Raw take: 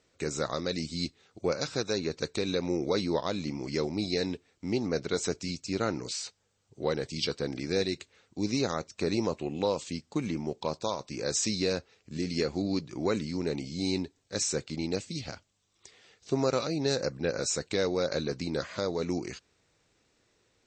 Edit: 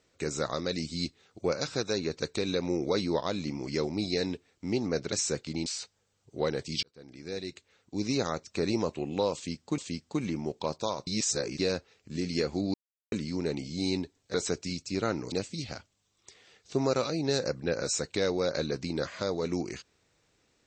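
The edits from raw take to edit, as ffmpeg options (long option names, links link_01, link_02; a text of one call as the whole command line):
ffmpeg -i in.wav -filter_complex "[0:a]asplit=11[link_01][link_02][link_03][link_04][link_05][link_06][link_07][link_08][link_09][link_10][link_11];[link_01]atrim=end=5.122[link_12];[link_02]atrim=start=14.348:end=14.892[link_13];[link_03]atrim=start=6.098:end=7.27,asetpts=PTS-STARTPTS,afade=type=out:start_time=1.168:duration=0.004:curve=hsin[link_14];[link_04]atrim=start=7.27:end=10.222,asetpts=PTS-STARTPTS,afade=type=in:duration=1.37[link_15];[link_05]atrim=start=9.788:end=11.082[link_16];[link_06]atrim=start=11.078:end=11.602,asetpts=PTS-STARTPTS,areverse[link_17];[link_07]atrim=start=11.598:end=12.75,asetpts=PTS-STARTPTS,afade=type=out:start_time=1.148:duration=0.004:curve=hsin[link_18];[link_08]atrim=start=12.75:end=13.13,asetpts=PTS-STARTPTS,volume=0[link_19];[link_09]atrim=start=13.13:end=14.352,asetpts=PTS-STARTPTS,afade=type=in:duration=0.004:curve=hsin[link_20];[link_10]atrim=start=5.118:end=6.102[link_21];[link_11]atrim=start=14.888[link_22];[link_12][link_13]acrossfade=duration=0.004:curve1=hsin:curve2=hsin[link_23];[link_14][link_15]concat=n=2:v=0:a=1[link_24];[link_23][link_24]acrossfade=duration=0.004:curve1=hsin:curve2=hsin[link_25];[link_25][link_16]acrossfade=duration=0.004:curve1=hsin:curve2=hsin[link_26];[link_26][link_17]acrossfade=duration=0.004:curve1=hsin:curve2=hsin[link_27];[link_18][link_19][link_20]concat=n=3:v=0:a=1[link_28];[link_27][link_28]acrossfade=duration=0.004:curve1=hsin:curve2=hsin[link_29];[link_29][link_21]acrossfade=duration=0.004:curve1=hsin:curve2=hsin[link_30];[link_30][link_22]acrossfade=duration=0.004:curve1=hsin:curve2=hsin" out.wav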